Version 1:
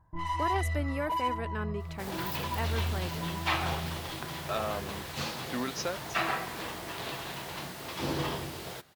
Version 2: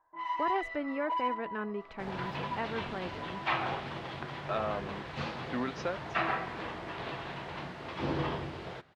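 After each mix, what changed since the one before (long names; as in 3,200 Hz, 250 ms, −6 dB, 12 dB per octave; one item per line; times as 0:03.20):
first sound: add Bessel high-pass filter 580 Hz, order 4
master: add low-pass filter 2,600 Hz 12 dB per octave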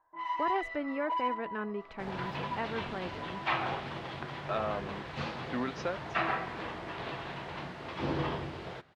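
nothing changed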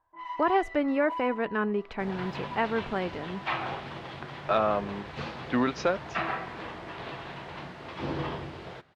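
speech +8.5 dB
first sound −3.0 dB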